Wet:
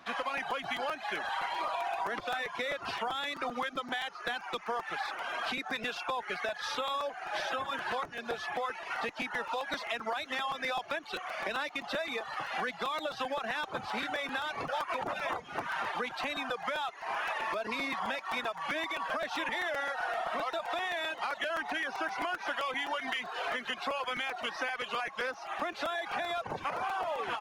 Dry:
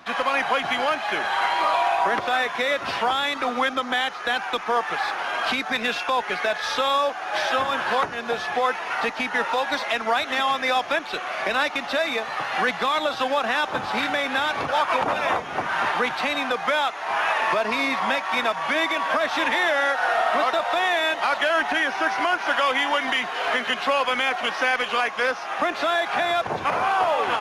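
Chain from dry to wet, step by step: reverb removal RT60 0.81 s; compressor, threshold -23 dBFS, peak gain reduction 6 dB; crackling interface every 0.13 s, samples 256, repeat, from 0.37; gain -7.5 dB

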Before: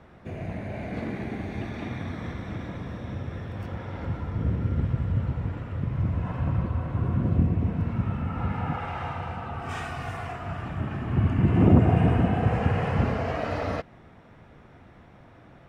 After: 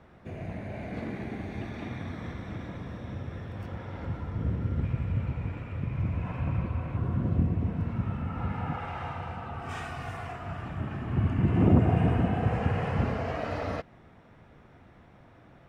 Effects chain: 4.83–6.97 bell 2400 Hz +12 dB 0.22 oct; gain -3.5 dB

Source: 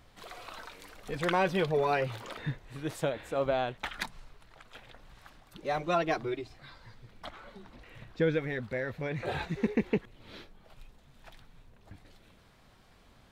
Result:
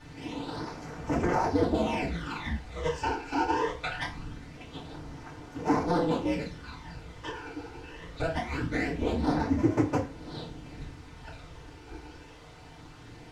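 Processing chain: cycle switcher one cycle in 2, inverted; bell 210 Hz +4.5 dB 0.77 oct; compressor 6:1, threshold -33 dBFS, peak gain reduction 11 dB; phaser stages 12, 0.23 Hz, lowest notch 190–3700 Hz; added noise pink -60 dBFS; air absorption 90 m; FDN reverb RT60 0.34 s, low-frequency decay 0.95×, high-frequency decay 0.85×, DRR -9.5 dB

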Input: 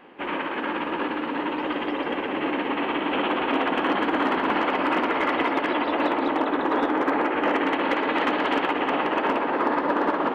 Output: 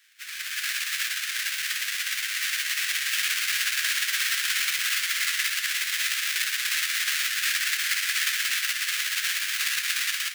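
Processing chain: half-waves squared off; steep high-pass 1600 Hz 48 dB/oct; AGC gain up to 11 dB; gain -8 dB

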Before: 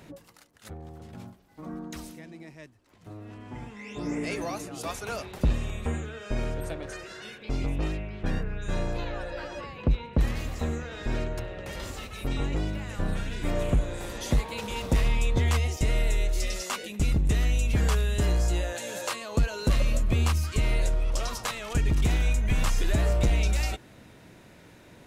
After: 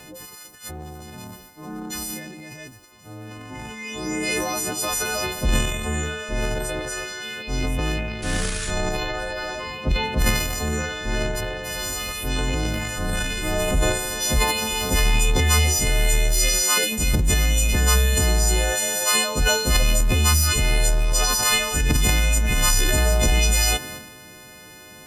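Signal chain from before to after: frequency quantiser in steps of 3 st; painted sound noise, 8.22–8.71, 1100–11000 Hz -39 dBFS; transient shaper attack -3 dB, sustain +10 dB; gain +5 dB

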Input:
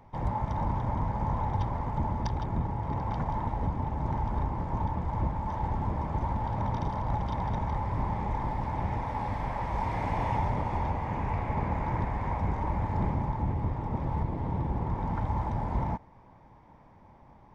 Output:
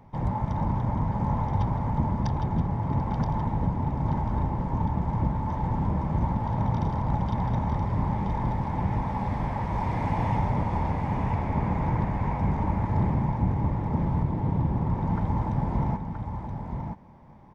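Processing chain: bell 170 Hz +7 dB 1.6 oct; echo 0.975 s -6.5 dB

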